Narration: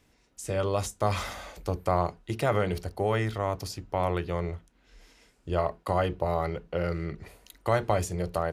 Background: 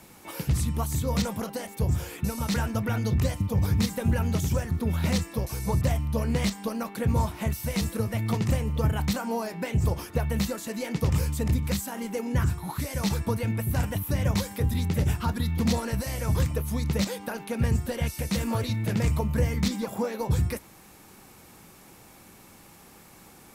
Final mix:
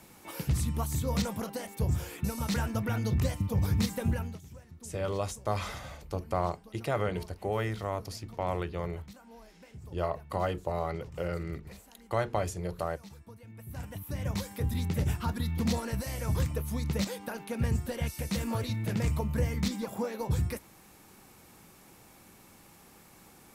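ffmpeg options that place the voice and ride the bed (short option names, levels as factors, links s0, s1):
-filter_complex "[0:a]adelay=4450,volume=0.596[s0];[1:a]volume=5.62,afade=t=out:st=4.04:d=0.35:silence=0.105925,afade=t=in:st=13.48:d=1.3:silence=0.11885[s1];[s0][s1]amix=inputs=2:normalize=0"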